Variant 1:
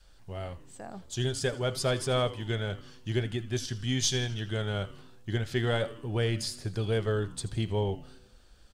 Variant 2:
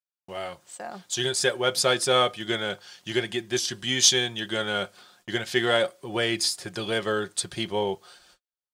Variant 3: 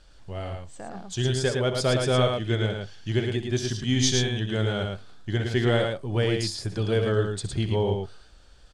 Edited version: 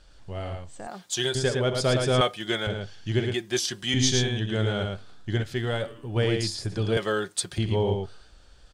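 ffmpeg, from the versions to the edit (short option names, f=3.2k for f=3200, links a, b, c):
-filter_complex "[1:a]asplit=4[a][b][c][d];[2:a]asplit=6[e][f][g][h][i][j];[e]atrim=end=0.872[k];[a]atrim=start=0.868:end=1.352[l];[f]atrim=start=1.348:end=2.212[m];[b]atrim=start=2.208:end=2.672[n];[g]atrim=start=2.668:end=3.342[o];[c]atrim=start=3.338:end=3.942[p];[h]atrim=start=3.938:end=5.432[q];[0:a]atrim=start=5.428:end=6.162[r];[i]atrim=start=6.158:end=6.972[s];[d]atrim=start=6.968:end=7.582[t];[j]atrim=start=7.578[u];[k][l]acrossfade=d=0.004:c1=hsin:c2=hsin[v];[v][m]acrossfade=d=0.004:c1=hsin:c2=hsin[w];[w][n]acrossfade=d=0.004:c1=hsin:c2=hsin[x];[x][o]acrossfade=d=0.004:c1=hsin:c2=hsin[y];[y][p]acrossfade=d=0.004:c1=hsin:c2=hsin[z];[z][q]acrossfade=d=0.004:c1=hsin:c2=hsin[aa];[aa][r]acrossfade=d=0.004:c1=hsin:c2=hsin[ab];[ab][s]acrossfade=d=0.004:c1=hsin:c2=hsin[ac];[ac][t]acrossfade=d=0.004:c1=hsin:c2=hsin[ad];[ad][u]acrossfade=d=0.004:c1=hsin:c2=hsin"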